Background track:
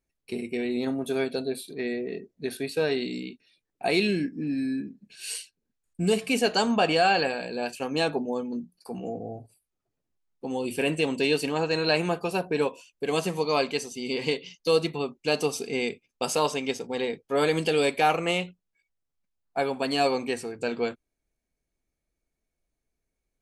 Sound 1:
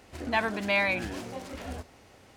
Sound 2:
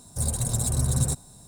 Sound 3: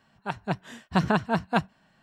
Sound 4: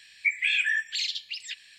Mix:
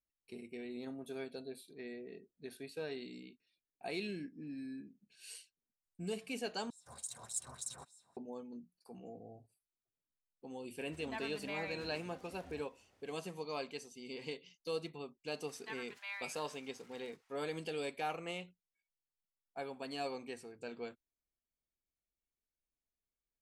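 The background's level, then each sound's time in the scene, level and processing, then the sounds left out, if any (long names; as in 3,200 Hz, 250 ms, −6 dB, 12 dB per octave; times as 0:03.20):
background track −16.5 dB
0:06.70: overwrite with 2 −6 dB + auto-filter band-pass sine 3.4 Hz 940–7,700 Hz
0:10.79: mix in 1 −17.5 dB
0:15.34: mix in 1 −17.5 dB + inverse Chebyshev high-pass filter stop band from 220 Hz, stop band 70 dB
not used: 3, 4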